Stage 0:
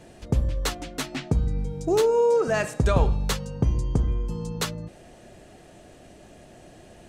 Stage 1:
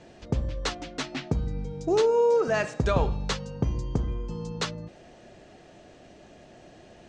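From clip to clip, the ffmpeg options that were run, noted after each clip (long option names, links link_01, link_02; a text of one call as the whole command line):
ffmpeg -i in.wav -af "lowpass=frequency=6500:width=0.5412,lowpass=frequency=6500:width=1.3066,lowshelf=frequency=120:gain=-6,volume=-1dB" out.wav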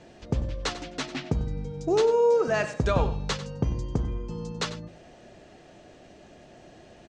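ffmpeg -i in.wav -af "aecho=1:1:95:0.2" out.wav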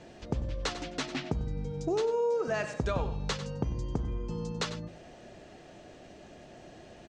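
ffmpeg -i in.wav -af "acompressor=threshold=-30dB:ratio=2.5" out.wav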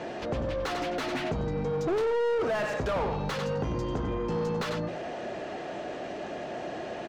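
ffmpeg -i in.wav -filter_complex "[0:a]asplit=2[link_01][link_02];[link_02]highpass=frequency=720:poles=1,volume=31dB,asoftclip=type=tanh:threshold=-17dB[link_03];[link_01][link_03]amix=inputs=2:normalize=0,lowpass=frequency=1100:poles=1,volume=-6dB,volume=-3dB" out.wav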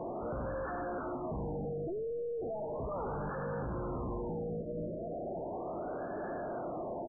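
ffmpeg -i in.wav -af "aecho=1:1:287|574|861|1148|1435|1722:0.282|0.152|0.0822|0.0444|0.024|0.0129,asoftclip=type=hard:threshold=-35.5dB,afftfilt=real='re*lt(b*sr/1024,670*pow(1800/670,0.5+0.5*sin(2*PI*0.36*pts/sr)))':imag='im*lt(b*sr/1024,670*pow(1800/670,0.5+0.5*sin(2*PI*0.36*pts/sr)))':win_size=1024:overlap=0.75" out.wav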